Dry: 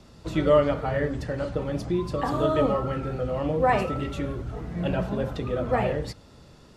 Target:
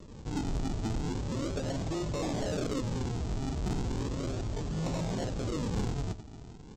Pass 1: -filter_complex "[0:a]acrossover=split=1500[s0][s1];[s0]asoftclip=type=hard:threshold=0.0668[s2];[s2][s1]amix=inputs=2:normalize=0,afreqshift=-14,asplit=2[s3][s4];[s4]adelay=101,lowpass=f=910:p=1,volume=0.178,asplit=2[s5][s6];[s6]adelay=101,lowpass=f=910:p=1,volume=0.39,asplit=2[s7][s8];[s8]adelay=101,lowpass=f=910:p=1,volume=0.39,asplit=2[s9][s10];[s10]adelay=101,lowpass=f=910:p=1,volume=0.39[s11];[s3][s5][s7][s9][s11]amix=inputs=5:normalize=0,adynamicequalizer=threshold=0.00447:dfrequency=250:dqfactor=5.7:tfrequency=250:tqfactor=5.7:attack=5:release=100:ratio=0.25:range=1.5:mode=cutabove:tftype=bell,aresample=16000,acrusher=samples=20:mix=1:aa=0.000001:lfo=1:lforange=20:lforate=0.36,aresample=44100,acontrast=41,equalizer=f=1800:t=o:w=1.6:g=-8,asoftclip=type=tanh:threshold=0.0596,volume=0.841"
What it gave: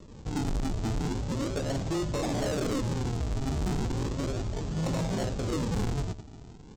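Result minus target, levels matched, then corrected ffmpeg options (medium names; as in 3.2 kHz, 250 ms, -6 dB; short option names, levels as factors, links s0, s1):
hard clipper: distortion -5 dB
-filter_complex "[0:a]acrossover=split=1500[s0][s1];[s0]asoftclip=type=hard:threshold=0.0211[s2];[s2][s1]amix=inputs=2:normalize=0,afreqshift=-14,asplit=2[s3][s4];[s4]adelay=101,lowpass=f=910:p=1,volume=0.178,asplit=2[s5][s6];[s6]adelay=101,lowpass=f=910:p=1,volume=0.39,asplit=2[s7][s8];[s8]adelay=101,lowpass=f=910:p=1,volume=0.39,asplit=2[s9][s10];[s10]adelay=101,lowpass=f=910:p=1,volume=0.39[s11];[s3][s5][s7][s9][s11]amix=inputs=5:normalize=0,adynamicequalizer=threshold=0.00447:dfrequency=250:dqfactor=5.7:tfrequency=250:tqfactor=5.7:attack=5:release=100:ratio=0.25:range=1.5:mode=cutabove:tftype=bell,aresample=16000,acrusher=samples=20:mix=1:aa=0.000001:lfo=1:lforange=20:lforate=0.36,aresample=44100,acontrast=41,equalizer=f=1800:t=o:w=1.6:g=-8,asoftclip=type=tanh:threshold=0.0596,volume=0.841"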